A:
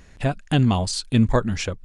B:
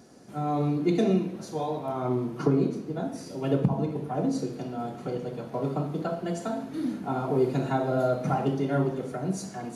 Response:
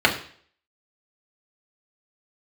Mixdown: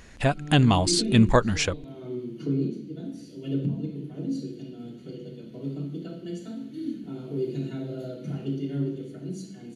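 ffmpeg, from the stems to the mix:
-filter_complex "[0:a]volume=3dB,asplit=2[link_01][link_02];[1:a]firequalizer=gain_entry='entry(310,0);entry(750,-25);entry(2800,-3)':delay=0.05:min_phase=1,volume=-9dB,asplit=2[link_03][link_04];[link_04]volume=-10.5dB[link_05];[link_02]apad=whole_len=434787[link_06];[link_03][link_06]sidechaincompress=threshold=-34dB:ratio=8:attack=16:release=293[link_07];[2:a]atrim=start_sample=2205[link_08];[link_05][link_08]afir=irnorm=-1:irlink=0[link_09];[link_01][link_07][link_09]amix=inputs=3:normalize=0,lowshelf=frequency=430:gain=-5"

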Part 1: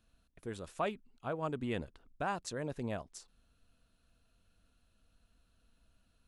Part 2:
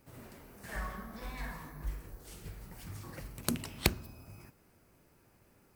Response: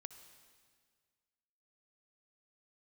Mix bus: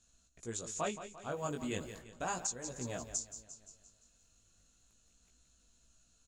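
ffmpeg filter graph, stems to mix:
-filter_complex "[0:a]lowpass=frequency=6900:width_type=q:width=9.9,bass=frequency=250:gain=0,treble=frequency=4000:gain=8,volume=0.5dB,asplit=3[link_01][link_02][link_03];[link_02]volume=-11.5dB[link_04];[1:a]acompressor=threshold=-46dB:ratio=6,adelay=1250,volume=-7.5dB,asplit=2[link_05][link_06];[link_06]volume=-23.5dB[link_07];[link_03]apad=whole_len=308717[link_08];[link_05][link_08]sidechaingate=range=-33dB:threshold=-54dB:ratio=16:detection=peak[link_09];[link_04][link_07]amix=inputs=2:normalize=0,aecho=0:1:173|346|519|692|865|1038|1211:1|0.5|0.25|0.125|0.0625|0.0312|0.0156[link_10];[link_01][link_09][link_10]amix=inputs=3:normalize=0,flanger=delay=16:depth=4.5:speed=0.36,alimiter=limit=-22.5dB:level=0:latency=1:release=486"

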